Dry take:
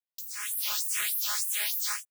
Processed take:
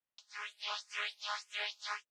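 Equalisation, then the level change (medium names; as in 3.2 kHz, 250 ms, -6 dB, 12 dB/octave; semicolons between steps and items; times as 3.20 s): low-pass 3.4 kHz 12 dB/octave; distance through air 160 m; dynamic bell 1.8 kHz, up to -7 dB, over -52 dBFS, Q 0.97; +4.5 dB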